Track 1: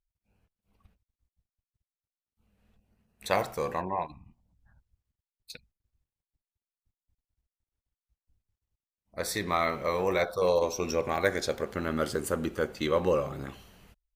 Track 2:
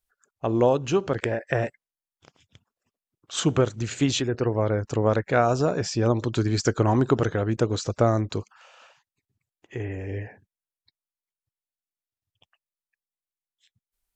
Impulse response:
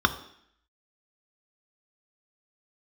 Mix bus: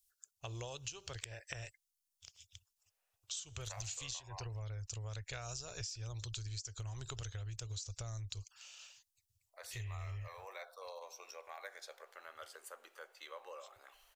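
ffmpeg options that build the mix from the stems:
-filter_complex "[0:a]highpass=f=600:w=0.5412,highpass=f=600:w=1.3066,acompressor=threshold=0.00316:ratio=1.5,adelay=400,volume=0.335[s0];[1:a]firequalizer=gain_entry='entry(100,0);entry(210,-28);entry(400,-18);entry(1700,-11);entry(2700,1);entry(5600,10)':delay=0.05:min_phase=1,acompressor=threshold=0.0282:ratio=6,asubboost=boost=6:cutoff=72,volume=0.794[s1];[s0][s1]amix=inputs=2:normalize=0,lowshelf=f=350:g=-5,acompressor=threshold=0.00891:ratio=6"

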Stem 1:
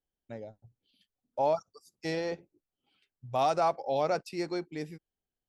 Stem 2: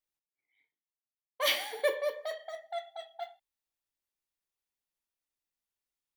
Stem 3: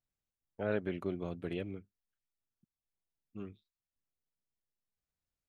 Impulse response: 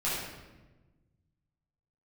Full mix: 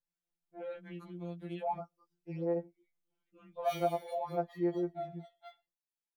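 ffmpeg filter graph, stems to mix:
-filter_complex "[0:a]lowpass=1100,acontrast=61,adelay=250,volume=0.335[s0];[1:a]asplit=2[s1][s2];[s2]adelay=4.2,afreqshift=0.81[s3];[s1][s3]amix=inputs=2:normalize=1,adelay=2250,volume=0.501[s4];[2:a]adynamicequalizer=threshold=0.00178:dfrequency=2300:dqfactor=0.7:tfrequency=2300:tqfactor=0.7:attack=5:release=100:ratio=0.375:range=3.5:mode=boostabove:tftype=highshelf,volume=0.75[s5];[s4][s5]amix=inputs=2:normalize=0,acompressor=threshold=0.01:ratio=4,volume=1[s6];[s0][s6]amix=inputs=2:normalize=0,afftfilt=real='re*2.83*eq(mod(b,8),0)':imag='im*2.83*eq(mod(b,8),0)':win_size=2048:overlap=0.75"

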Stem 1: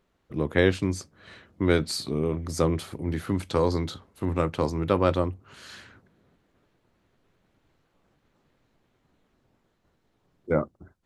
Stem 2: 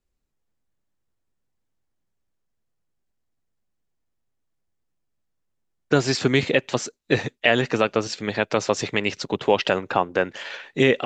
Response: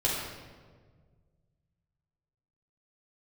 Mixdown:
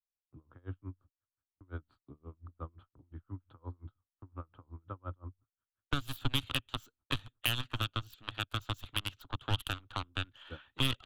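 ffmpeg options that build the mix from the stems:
-filter_complex "[0:a]lowpass=1200,aeval=exprs='val(0)*pow(10,-33*(0.5-0.5*cos(2*PI*5.7*n/s))/20)':c=same,volume=0.376[s0];[1:a]aeval=exprs='0.708*(cos(1*acos(clip(val(0)/0.708,-1,1)))-cos(1*PI/2))+0.0355*(cos(6*acos(clip(val(0)/0.708,-1,1)))-cos(6*PI/2))+0.126*(cos(7*acos(clip(val(0)/0.708,-1,1)))-cos(7*PI/2))+0.0126*(cos(8*acos(clip(val(0)/0.708,-1,1)))-cos(8*PI/2))':c=same,volume=1.06[s1];[s0][s1]amix=inputs=2:normalize=0,agate=range=0.0562:threshold=0.00158:ratio=16:detection=peak,firequalizer=gain_entry='entry(110,0);entry(180,-19);entry(270,-7);entry(410,-17);entry(1300,1);entry(2000,-15);entry(3200,0);entry(5200,-22);entry(12000,-1)':delay=0.05:min_phase=1,acrossover=split=210|3000[s2][s3][s4];[s3]acompressor=threshold=0.01:ratio=4[s5];[s2][s5][s4]amix=inputs=3:normalize=0"

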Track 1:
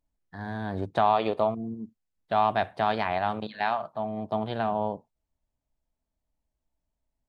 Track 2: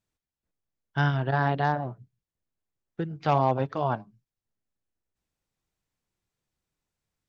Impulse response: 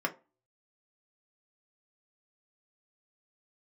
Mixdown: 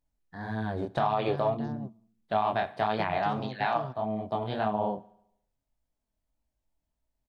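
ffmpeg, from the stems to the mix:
-filter_complex "[0:a]flanger=delay=18.5:depth=7.3:speed=1.7,volume=1.33,asplit=3[s0][s1][s2];[s1]volume=0.0708[s3];[1:a]acrossover=split=450|4400[s4][s5][s6];[s4]acompressor=threshold=0.0224:ratio=4[s7];[s5]acompressor=threshold=0.00447:ratio=4[s8];[s6]acompressor=threshold=0.00112:ratio=4[s9];[s7][s8][s9]amix=inputs=3:normalize=0,volume=0.708[s10];[s2]apad=whole_len=321303[s11];[s10][s11]sidechaingate=range=0.0224:threshold=0.0112:ratio=16:detection=peak[s12];[s3]aecho=0:1:71|142|213|284|355|426|497|568:1|0.55|0.303|0.166|0.0915|0.0503|0.0277|0.0152[s13];[s0][s12][s13]amix=inputs=3:normalize=0,alimiter=limit=0.158:level=0:latency=1:release=94"

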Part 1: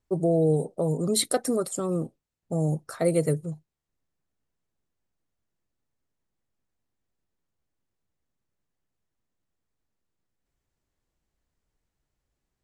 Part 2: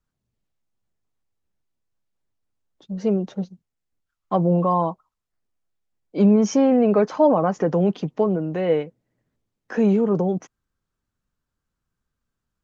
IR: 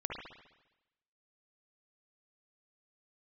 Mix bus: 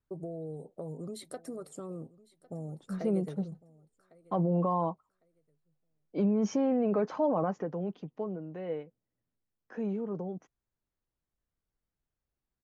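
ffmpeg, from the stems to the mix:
-filter_complex "[0:a]acompressor=threshold=0.0398:ratio=6,volume=0.355,asplit=2[s0][s1];[s1]volume=0.0944[s2];[1:a]volume=0.473,afade=t=out:st=7.4:d=0.28:silence=0.354813[s3];[s2]aecho=0:1:1104|2208|3312|4416:1|0.24|0.0576|0.0138[s4];[s0][s3][s4]amix=inputs=3:normalize=0,highshelf=f=3700:g=-9,alimiter=limit=0.0944:level=0:latency=1:release=26"

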